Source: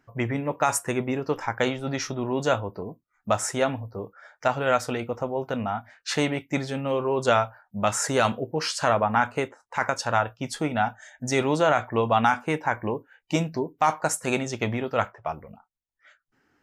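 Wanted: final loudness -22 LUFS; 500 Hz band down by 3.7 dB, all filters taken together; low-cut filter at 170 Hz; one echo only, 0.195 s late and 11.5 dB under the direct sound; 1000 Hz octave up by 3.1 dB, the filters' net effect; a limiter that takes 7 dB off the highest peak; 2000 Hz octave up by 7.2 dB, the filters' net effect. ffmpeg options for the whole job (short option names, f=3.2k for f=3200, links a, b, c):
-af "highpass=170,equalizer=f=500:t=o:g=-6.5,equalizer=f=1k:t=o:g=3.5,equalizer=f=2k:t=o:g=9,alimiter=limit=-9.5dB:level=0:latency=1,aecho=1:1:195:0.266,volume=4dB"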